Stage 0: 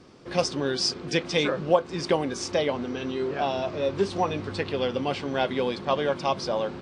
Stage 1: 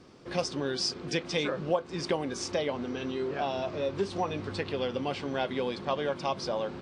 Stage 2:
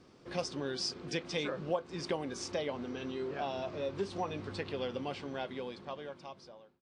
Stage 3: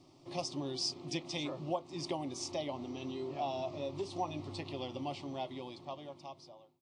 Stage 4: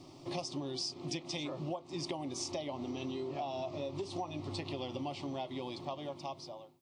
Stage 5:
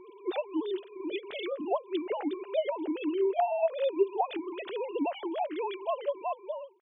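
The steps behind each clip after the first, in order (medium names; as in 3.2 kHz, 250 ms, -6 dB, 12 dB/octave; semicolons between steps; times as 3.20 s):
compression 1.5:1, threshold -28 dBFS, peak gain reduction 5.5 dB; trim -2.5 dB
fade out at the end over 1.92 s; trim -5.5 dB
static phaser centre 310 Hz, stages 8; trim +1.5 dB
compression, threshold -44 dBFS, peak gain reduction 14 dB; trim +8 dB
formants replaced by sine waves; trim +8 dB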